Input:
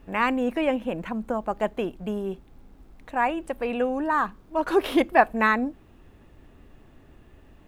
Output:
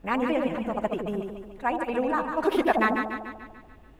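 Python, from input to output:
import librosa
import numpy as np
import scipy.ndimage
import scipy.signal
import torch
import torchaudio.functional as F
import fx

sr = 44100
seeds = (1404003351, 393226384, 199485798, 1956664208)

y = fx.echo_alternate(x, sr, ms=140, hz=860.0, feedback_pct=73, wet_db=-3)
y = fx.stretch_vocoder(y, sr, factor=0.52)
y = y * 10.0 ** (-1.5 / 20.0)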